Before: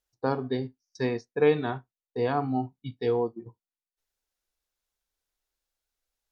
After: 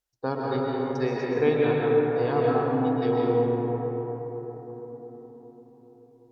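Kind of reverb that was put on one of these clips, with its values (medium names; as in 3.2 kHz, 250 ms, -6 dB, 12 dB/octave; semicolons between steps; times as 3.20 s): algorithmic reverb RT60 5 s, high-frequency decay 0.3×, pre-delay 90 ms, DRR -4.5 dB; trim -2 dB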